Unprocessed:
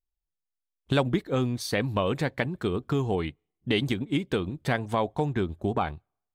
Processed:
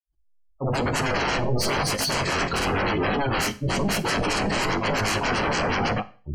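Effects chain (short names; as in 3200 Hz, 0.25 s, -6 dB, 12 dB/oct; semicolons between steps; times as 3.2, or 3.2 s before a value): grains 0.17 s, grains 20/s, spray 0.39 s, pitch spread up and down by 0 st; sine folder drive 20 dB, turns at -17.5 dBFS; chorus 1 Hz, delay 19 ms, depth 5.3 ms; spectral gate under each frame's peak -20 dB strong; Butterworth band-stop 3600 Hz, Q 5.9; Schroeder reverb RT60 0.39 s, combs from 30 ms, DRR 15 dB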